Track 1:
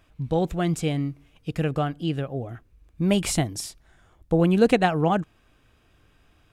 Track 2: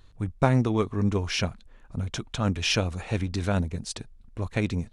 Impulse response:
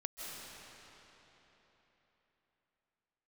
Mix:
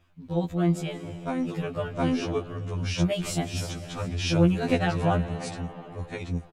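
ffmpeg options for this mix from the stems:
-filter_complex "[0:a]equalizer=frequency=9200:width_type=o:width=0.8:gain=-4.5,volume=-4.5dB,asplit=4[link_01][link_02][link_03][link_04];[link_02]volume=-6.5dB[link_05];[link_03]volume=-17.5dB[link_06];[1:a]adelay=850,volume=1dB,asplit=2[link_07][link_08];[link_08]volume=-4.5dB[link_09];[link_04]apad=whole_len=254629[link_10];[link_07][link_10]sidechaincompress=threshold=-33dB:ratio=8:attack=5.6:release=1330[link_11];[2:a]atrim=start_sample=2205[link_12];[link_05][link_12]afir=irnorm=-1:irlink=0[link_13];[link_06][link_09]amix=inputs=2:normalize=0,aecho=0:1:718:1[link_14];[link_01][link_11][link_13][link_14]amix=inputs=4:normalize=0,afftfilt=real='re*2*eq(mod(b,4),0)':imag='im*2*eq(mod(b,4),0)':win_size=2048:overlap=0.75"

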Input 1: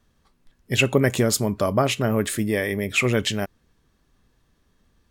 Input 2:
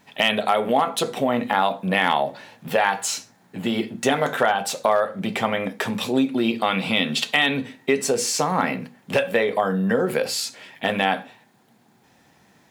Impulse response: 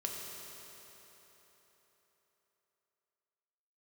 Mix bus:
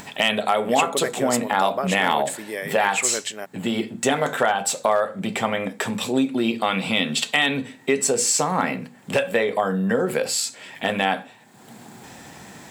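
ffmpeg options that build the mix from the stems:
-filter_complex "[0:a]highpass=440,adynamicequalizer=threshold=0.02:dfrequency=2200:dqfactor=0.7:tfrequency=2200:tqfactor=0.7:attack=5:release=100:ratio=0.375:range=2:mode=cutabove:tftype=highshelf,volume=-4dB[link_01];[1:a]volume=-0.5dB[link_02];[link_01][link_02]amix=inputs=2:normalize=0,equalizer=frequency=7800:width_type=o:width=0.23:gain=10.5,acompressor=mode=upward:threshold=-28dB:ratio=2.5"

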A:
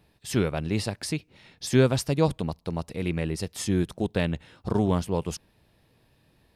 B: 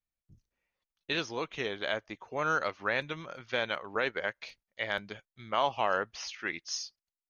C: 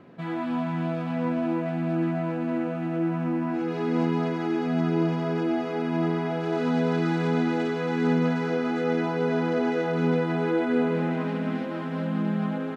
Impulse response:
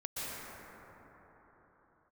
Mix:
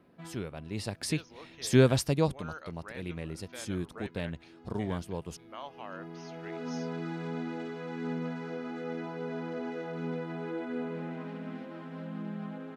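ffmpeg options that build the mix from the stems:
-filter_complex "[0:a]volume=-1.5dB,afade=type=in:start_time=0.68:duration=0.42:silence=0.266073,afade=type=out:start_time=2.06:duration=0.37:silence=0.375837,asplit=2[link_01][link_02];[1:a]volume=-15dB[link_03];[2:a]volume=-12dB[link_04];[link_02]apad=whole_len=562731[link_05];[link_04][link_05]sidechaincompress=threshold=-52dB:ratio=10:attack=23:release=985[link_06];[link_01][link_03][link_06]amix=inputs=3:normalize=0"

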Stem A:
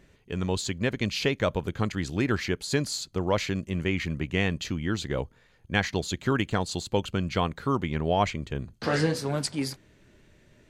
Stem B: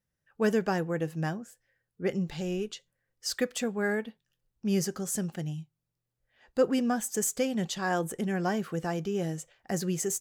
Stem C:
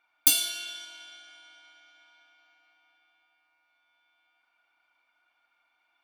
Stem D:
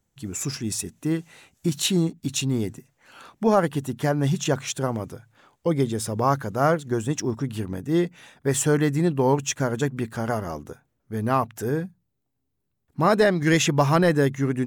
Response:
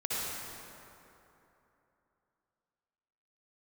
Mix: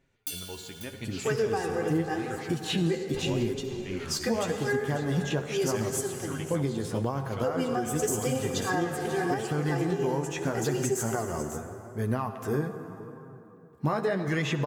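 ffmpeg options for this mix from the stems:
-filter_complex "[0:a]volume=-10.5dB,asplit=2[link_01][link_02];[link_02]volume=-13dB[link_03];[1:a]aecho=1:1:2.5:0.89,adelay=850,volume=1.5dB,asplit=3[link_04][link_05][link_06];[link_05]volume=-8.5dB[link_07];[link_06]volume=-12.5dB[link_08];[2:a]volume=-9.5dB,asplit=3[link_09][link_10][link_11];[link_10]volume=-12.5dB[link_12];[link_11]volume=-13dB[link_13];[3:a]acrossover=split=3500[link_14][link_15];[link_15]acompressor=threshold=-40dB:ratio=4:attack=1:release=60[link_16];[link_14][link_16]amix=inputs=2:normalize=0,highpass=frequency=53:width=0.5412,highpass=frequency=53:width=1.3066,acompressor=threshold=-20dB:ratio=6,adelay=850,volume=2dB,asplit=2[link_17][link_18];[link_18]volume=-15dB[link_19];[4:a]atrim=start_sample=2205[link_20];[link_03][link_07][link_12][link_19]amix=inputs=4:normalize=0[link_21];[link_21][link_20]afir=irnorm=-1:irlink=0[link_22];[link_08][link_13]amix=inputs=2:normalize=0,aecho=0:1:541:1[link_23];[link_01][link_04][link_09][link_17][link_22][link_23]amix=inputs=6:normalize=0,flanger=delay=7.4:depth=6.2:regen=34:speed=0.83:shape=sinusoidal,alimiter=limit=-18dB:level=0:latency=1:release=408"

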